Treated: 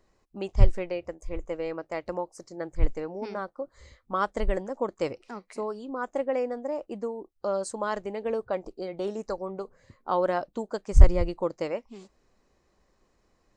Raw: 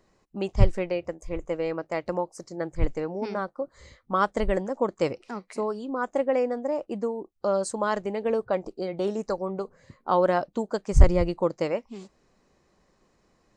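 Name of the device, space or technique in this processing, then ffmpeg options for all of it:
low shelf boost with a cut just above: -af "lowshelf=f=81:g=7,equalizer=f=160:t=o:w=0.96:g=-5,volume=-3.5dB"

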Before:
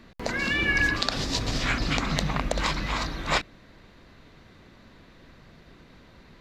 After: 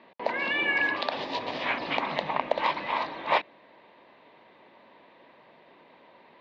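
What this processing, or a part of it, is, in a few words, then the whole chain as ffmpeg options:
phone earpiece: -af "highpass=380,equalizer=f=590:t=q:w=4:g=5,equalizer=f=920:t=q:w=4:g=9,equalizer=f=1.4k:t=q:w=4:g=-9,lowpass=f=3.3k:w=0.5412,lowpass=f=3.3k:w=1.3066"

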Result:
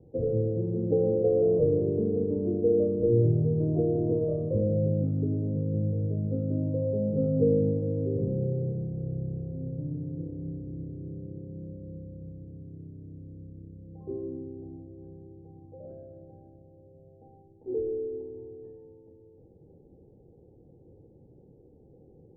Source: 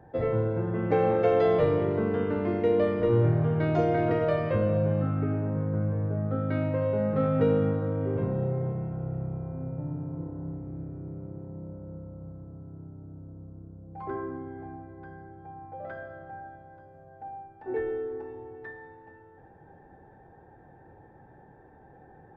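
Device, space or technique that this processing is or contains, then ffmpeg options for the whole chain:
under water: -af "lowpass=f=430:w=0.5412,lowpass=f=430:w=1.3066,equalizer=f=500:t=o:w=0.38:g=7"

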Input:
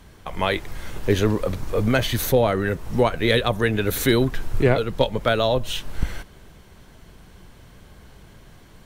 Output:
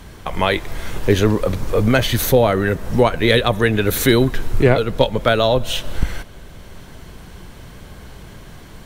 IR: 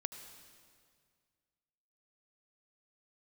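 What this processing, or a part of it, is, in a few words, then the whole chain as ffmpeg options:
ducked reverb: -filter_complex "[0:a]asplit=3[a][b][c];[1:a]atrim=start_sample=2205[d];[b][d]afir=irnorm=-1:irlink=0[e];[c]apad=whole_len=390675[f];[e][f]sidechaincompress=threshold=-29dB:ratio=8:attack=6.4:release=591,volume=0.5dB[g];[a][g]amix=inputs=2:normalize=0,volume=3.5dB"

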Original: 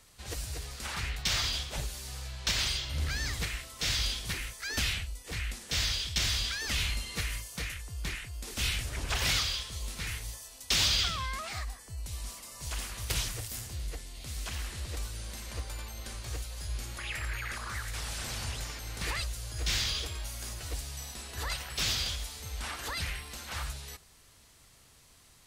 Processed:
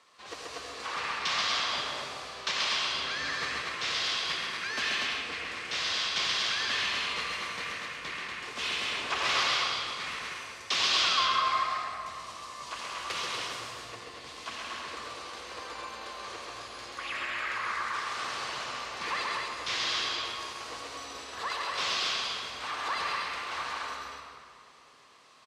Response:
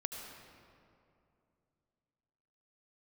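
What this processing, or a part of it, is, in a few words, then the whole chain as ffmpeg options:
station announcement: -filter_complex "[0:a]highpass=360,lowpass=4.4k,equalizer=f=1.1k:t=o:w=0.29:g=10.5,aecho=1:1:134.1|239.1:0.631|0.631[a];[1:a]atrim=start_sample=2205[b];[a][b]afir=irnorm=-1:irlink=0,volume=2.5dB"

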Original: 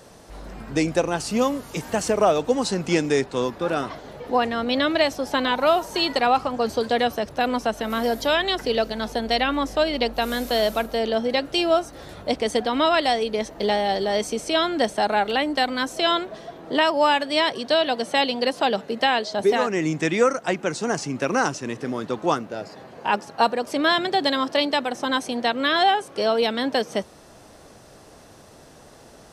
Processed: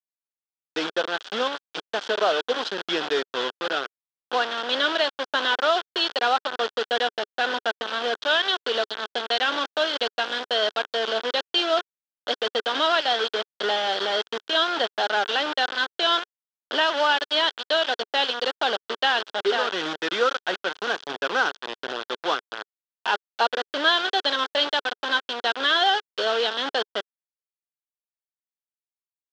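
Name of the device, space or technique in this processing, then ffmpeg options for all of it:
hand-held game console: -af "acrusher=bits=3:mix=0:aa=0.000001,highpass=420,equalizer=f=420:t=q:w=4:g=3,equalizer=f=1.5k:t=q:w=4:g=9,equalizer=f=2.2k:t=q:w=4:g=-6,equalizer=f=3.3k:t=q:w=4:g=10,lowpass=f=4.9k:w=0.5412,lowpass=f=4.9k:w=1.3066,volume=-4dB"

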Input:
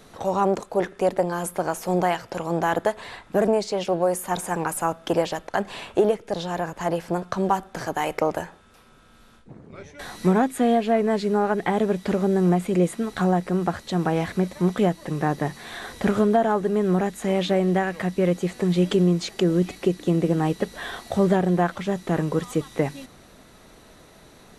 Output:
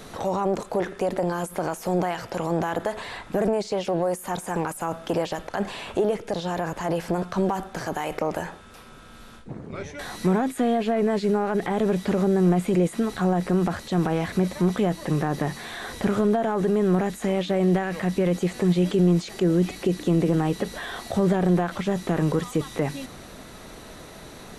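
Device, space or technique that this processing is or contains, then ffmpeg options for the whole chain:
de-esser from a sidechain: -filter_complex "[0:a]asplit=2[a][b];[b]highpass=f=5.5k:p=1,apad=whole_len=1084194[c];[a][c]sidechaincompress=threshold=-51dB:ratio=3:attack=2.6:release=21,volume=7.5dB"

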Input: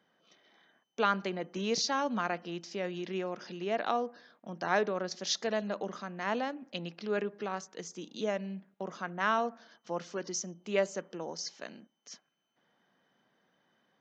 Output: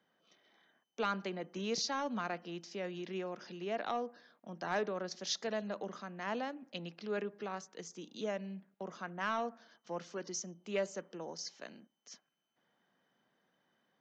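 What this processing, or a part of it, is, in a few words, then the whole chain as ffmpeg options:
one-band saturation: -filter_complex "[0:a]acrossover=split=280|2800[a][b][c];[b]asoftclip=type=tanh:threshold=-22dB[d];[a][d][c]amix=inputs=3:normalize=0,volume=-4.5dB"

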